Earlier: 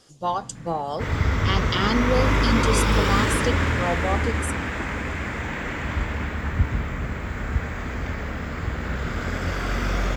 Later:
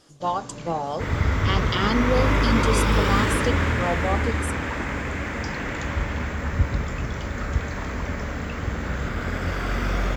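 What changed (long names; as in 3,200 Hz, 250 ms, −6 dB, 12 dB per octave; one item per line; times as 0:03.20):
first sound: remove inverse Chebyshev band-stop filter 970–2,800 Hz, stop band 80 dB
master: add parametric band 6,900 Hz −3 dB 1.9 octaves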